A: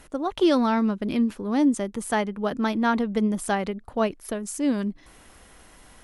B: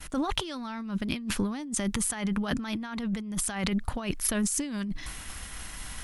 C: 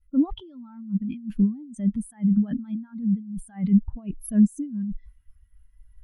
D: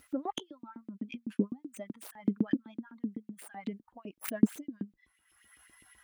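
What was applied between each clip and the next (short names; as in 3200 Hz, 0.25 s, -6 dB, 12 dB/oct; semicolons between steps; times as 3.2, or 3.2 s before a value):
expander -47 dBFS; bell 460 Hz -14 dB 2.1 oct; negative-ratio compressor -40 dBFS, ratio -1; gain +8.5 dB
spectral expander 2.5:1; gain +2 dB
tracing distortion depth 0.29 ms; LFO high-pass saw up 7.9 Hz 280–3100 Hz; upward compressor, threshold -44 dBFS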